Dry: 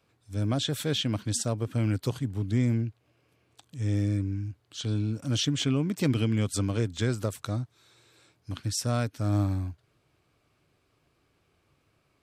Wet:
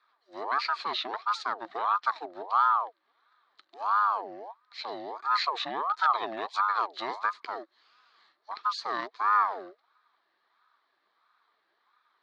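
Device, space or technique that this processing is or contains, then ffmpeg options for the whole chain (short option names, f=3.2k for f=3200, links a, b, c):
voice changer toy: -af "aeval=exprs='val(0)*sin(2*PI*790*n/s+790*0.45/1.5*sin(2*PI*1.5*n/s))':c=same,highpass=520,equalizer=f=550:t=q:w=4:g=-10,equalizer=f=790:t=q:w=4:g=-4,equalizer=f=1.2k:t=q:w=4:g=8,equalizer=f=1.7k:t=q:w=4:g=5,equalizer=f=2.8k:t=q:w=4:g=-7,equalizer=f=4.1k:t=q:w=4:g=9,lowpass=f=4.2k:w=0.5412,lowpass=f=4.2k:w=1.3066"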